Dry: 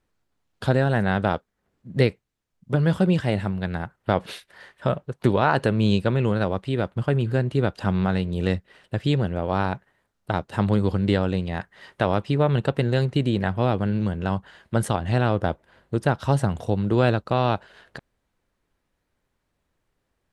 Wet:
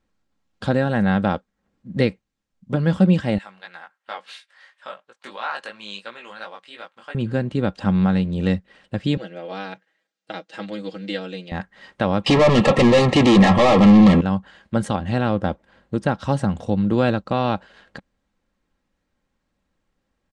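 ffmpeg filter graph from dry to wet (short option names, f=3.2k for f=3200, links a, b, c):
-filter_complex "[0:a]asettb=1/sr,asplit=3[a][b][c];[a]atrim=end=3.384[d];[b]atrim=start=3.38:end=7.15,asetpts=PTS-STARTPTS,afade=t=in:d=0.004:c=qsin,afade=t=out:st=3.766:d=0.004:c=qsin,flanger=delay=17:depth=3.8:speed=2.9,highpass=1.1k[e];[c]atrim=start=7.146[f];[d][e]acrossfade=d=0.004:c1=hsin:c2=qsin[g];[g][f]acrossfade=d=0.004:c1=qsin:c2=hsin,asettb=1/sr,asplit=3[h][i][j];[h]atrim=end=9.174[k];[i]atrim=start=9.17:end=11.52,asetpts=PTS-STARTPTS,afade=t=in:d=0.004:c=qsin,afade=t=out:st=2.346:d=0.004:c=qsin,highpass=560,lowpass=6.8k,equalizer=f=1k:w=1.3:g=-14,aecho=1:1:6.2:0.77,atrim=end_sample=103635[l];[j]atrim=start=11.516[m];[k][l]acrossfade=d=0.004:c1=hsin:c2=qsin[n];[n][m]acrossfade=d=0.004:c1=qsin:c2=hsin,asettb=1/sr,asplit=3[o][p][q];[o]atrim=end=12.264[r];[p]atrim=start=12.26:end=14.21,asetpts=PTS-STARTPTS,afade=t=in:d=0.004:c=qsin,afade=t=out:st=1.946:d=0.004:c=qsin,asplit=2[s][t];[t]highpass=f=720:p=1,volume=37dB,asoftclip=type=tanh:threshold=-7.5dB[u];[s][u]amix=inputs=2:normalize=0,lowpass=f=2.9k:p=1,volume=-6dB,asuperstop=centerf=1500:order=20:qfactor=5.3[v];[q]atrim=start=14.206[w];[r][v]acrossfade=d=0.004:c1=hsin:c2=qsin[x];[x][w]acrossfade=d=0.004:c1=qsin:c2=hsin,lowpass=f=8.4k:w=0.5412,lowpass=f=8.4k:w=1.3066,equalizer=f=190:w=2.9:g=7,aecho=1:1:3.7:0.35"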